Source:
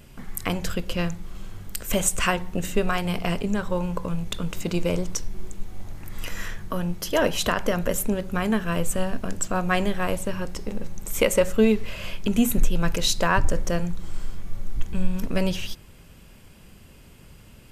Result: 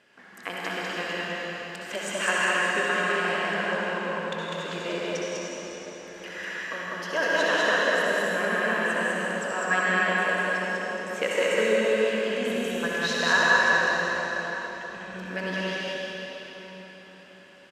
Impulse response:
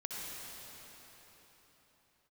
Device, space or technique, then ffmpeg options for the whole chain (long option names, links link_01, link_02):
station announcement: -filter_complex "[0:a]highpass=410,lowpass=4900,equalizer=frequency=1700:width_type=o:width=0.27:gain=11,aecho=1:1:160.3|198.3:0.316|0.891[link_01];[1:a]atrim=start_sample=2205[link_02];[link_01][link_02]afir=irnorm=-1:irlink=0,volume=-2.5dB"